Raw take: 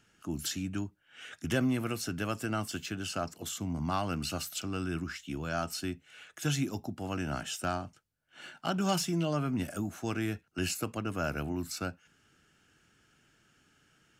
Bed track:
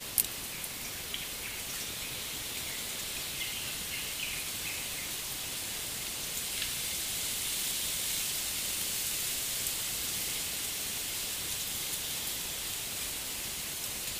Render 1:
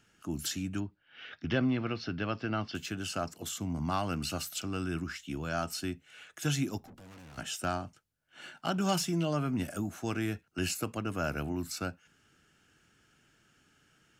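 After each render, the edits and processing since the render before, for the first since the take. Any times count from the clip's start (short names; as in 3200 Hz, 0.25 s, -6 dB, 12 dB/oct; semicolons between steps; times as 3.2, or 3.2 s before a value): 0.8–2.75 steep low-pass 5000 Hz 48 dB/oct; 6.78–7.38 tube stage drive 50 dB, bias 0.5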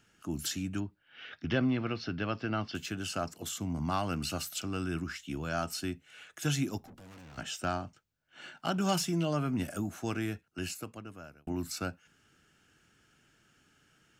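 7.21–8.6 bell 11000 Hz -14.5 dB 0.46 oct; 10.04–11.47 fade out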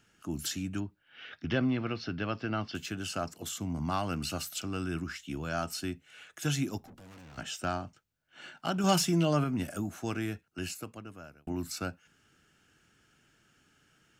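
8.84–9.44 gain +4 dB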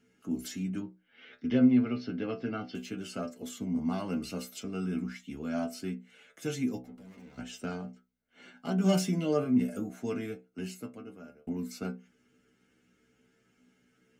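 metallic resonator 61 Hz, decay 0.31 s, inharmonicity 0.002; small resonant body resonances 240/430/2100 Hz, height 15 dB, ringing for 40 ms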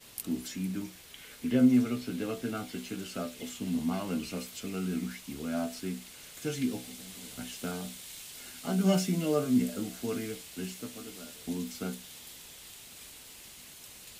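add bed track -12.5 dB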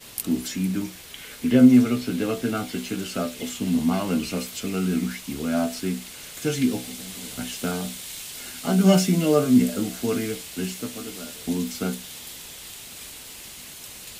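gain +9 dB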